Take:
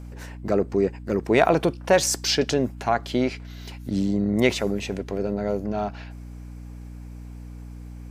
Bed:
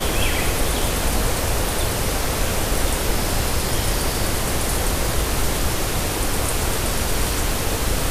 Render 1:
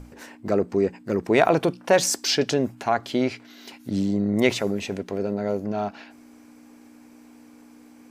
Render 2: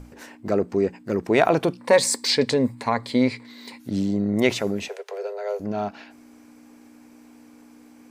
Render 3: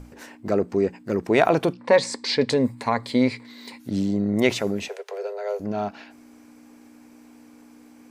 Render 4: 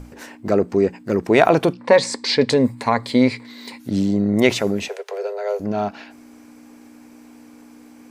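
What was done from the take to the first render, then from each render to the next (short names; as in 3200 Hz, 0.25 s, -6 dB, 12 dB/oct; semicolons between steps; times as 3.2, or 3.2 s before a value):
notches 60/120/180 Hz
1.78–3.8 ripple EQ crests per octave 0.97, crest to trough 11 dB; 4.88–5.6 steep high-pass 410 Hz 96 dB/oct
1.73–2.5 air absorption 110 m
gain +4.5 dB; limiter -2 dBFS, peak gain reduction 1.5 dB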